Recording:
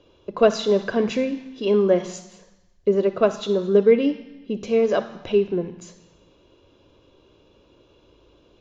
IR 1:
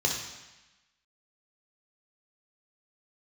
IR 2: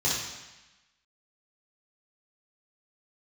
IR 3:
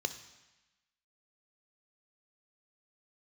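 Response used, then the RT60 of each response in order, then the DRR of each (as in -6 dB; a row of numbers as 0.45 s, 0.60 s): 3; 1.0 s, 1.0 s, 1.1 s; 0.0 dB, -7.5 dB, 10.0 dB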